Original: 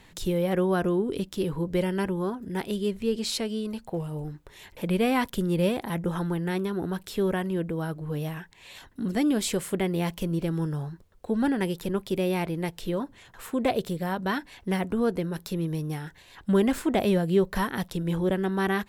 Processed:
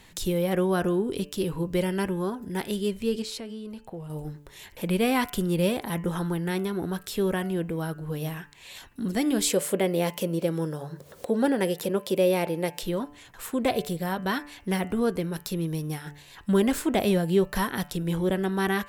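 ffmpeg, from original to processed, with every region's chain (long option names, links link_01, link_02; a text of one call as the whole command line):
ffmpeg -i in.wav -filter_complex "[0:a]asettb=1/sr,asplit=3[link_01][link_02][link_03];[link_01]atrim=end=3.224[link_04];[link_02]atrim=start=3.22:end=4.1,asetpts=PTS-STARTPTS,afade=type=in:duration=0.004:curve=qsin,afade=type=out:start_time=0.876:duration=0.004:curve=qsin,highshelf=frequency=3400:gain=-8.5,acompressor=threshold=-39dB:ratio=2:attack=3.2:release=140:knee=1:detection=peak[link_05];[link_03]atrim=start=4.096[link_06];[link_04][link_05]acrossfade=duration=0.004:curve1=hsin:curve2=qsin[link_07];[link_07][link_06]acrossfade=duration=0.004:curve1=qsin:curve2=hsin,asettb=1/sr,asplit=3[link_08][link_09][link_10];[link_08]atrim=end=9.504[link_11];[link_09]atrim=start=9.5:end=12.83,asetpts=PTS-STARTPTS,afade=type=in:duration=0.004:curve=qsin,afade=type=out:start_time=3.326:duration=0.004:curve=qsin,highpass=160,equalizer=frequency=540:width_type=o:width=0.56:gain=9.5,acompressor=mode=upward:threshold=-31dB:ratio=2.5:attack=3.2:release=140:knee=2.83:detection=peak[link_12];[link_10]atrim=start=12.826[link_13];[link_11][link_12]acrossfade=duration=0.004:curve1=hsin:curve2=qsin[link_14];[link_14][link_13]acrossfade=duration=0.004:curve1=qsin:curve2=hsin,highshelf=frequency=4100:gain=6.5,bandreject=frequency=145.8:width_type=h:width=4,bandreject=frequency=291.6:width_type=h:width=4,bandreject=frequency=437.4:width_type=h:width=4,bandreject=frequency=583.2:width_type=h:width=4,bandreject=frequency=729:width_type=h:width=4,bandreject=frequency=874.8:width_type=h:width=4,bandreject=frequency=1020.6:width_type=h:width=4,bandreject=frequency=1166.4:width_type=h:width=4,bandreject=frequency=1312.2:width_type=h:width=4,bandreject=frequency=1458:width_type=h:width=4,bandreject=frequency=1603.8:width_type=h:width=4,bandreject=frequency=1749.6:width_type=h:width=4,bandreject=frequency=1895.4:width_type=h:width=4,bandreject=frequency=2041.2:width_type=h:width=4,bandreject=frequency=2187:width_type=h:width=4,bandreject=frequency=2332.8:width_type=h:width=4,bandreject=frequency=2478.6:width_type=h:width=4,bandreject=frequency=2624.4:width_type=h:width=4,bandreject=frequency=2770.2:width_type=h:width=4,bandreject=frequency=2916:width_type=h:width=4,bandreject=frequency=3061.8:width_type=h:width=4" out.wav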